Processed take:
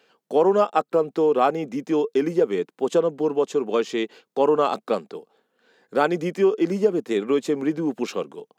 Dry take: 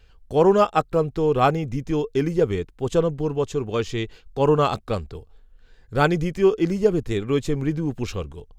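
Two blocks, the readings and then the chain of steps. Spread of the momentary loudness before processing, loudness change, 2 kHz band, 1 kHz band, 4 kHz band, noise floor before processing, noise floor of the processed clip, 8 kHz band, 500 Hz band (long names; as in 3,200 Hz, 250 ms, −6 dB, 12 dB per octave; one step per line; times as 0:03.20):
10 LU, −0.5 dB, −2.0 dB, −0.5 dB, −2.0 dB, −53 dBFS, −77 dBFS, can't be measured, +0.5 dB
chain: Butterworth high-pass 190 Hz 36 dB per octave
parametric band 640 Hz +5.5 dB 2.4 octaves
downward compressor 2.5 to 1, threshold −17 dBFS, peak gain reduction 7.5 dB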